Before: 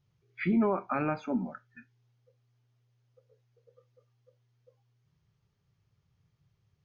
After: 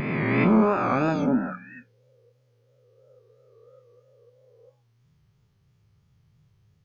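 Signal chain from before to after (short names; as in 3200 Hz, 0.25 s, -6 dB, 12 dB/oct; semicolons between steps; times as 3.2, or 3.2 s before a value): spectral swells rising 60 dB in 2.29 s; low shelf 340 Hz +3.5 dB; de-hum 94.57 Hz, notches 13; vibrato 3 Hz 82 cents; gain +3 dB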